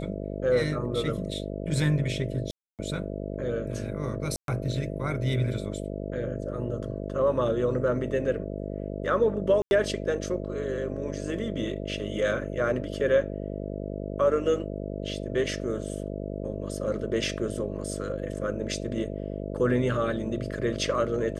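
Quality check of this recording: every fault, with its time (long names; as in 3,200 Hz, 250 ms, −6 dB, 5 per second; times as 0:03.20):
mains buzz 50 Hz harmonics 13 −34 dBFS
0:02.51–0:02.79: drop-out 278 ms
0:04.36–0:04.48: drop-out 122 ms
0:09.62–0:09.71: drop-out 91 ms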